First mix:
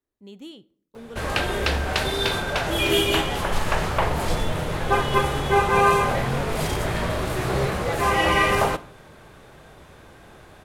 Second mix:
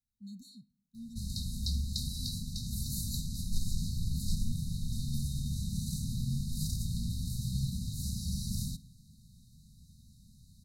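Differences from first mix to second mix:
background -6.0 dB; master: add brick-wall FIR band-stop 250–3700 Hz

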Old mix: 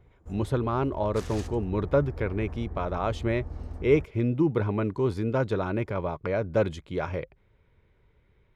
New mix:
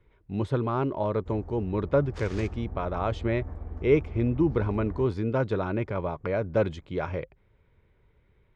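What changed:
background: entry +1.00 s; master: add air absorption 85 m

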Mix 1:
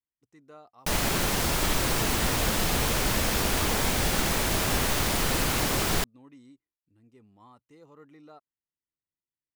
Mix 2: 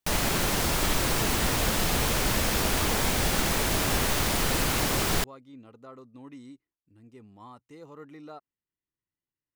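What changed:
speech +6.5 dB; background: entry -0.80 s

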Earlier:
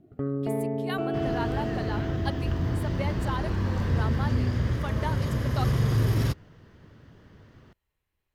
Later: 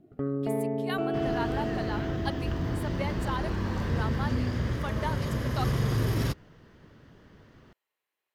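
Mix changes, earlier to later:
speech: add HPF 460 Hz; master: add bell 93 Hz -5.5 dB 1.1 oct

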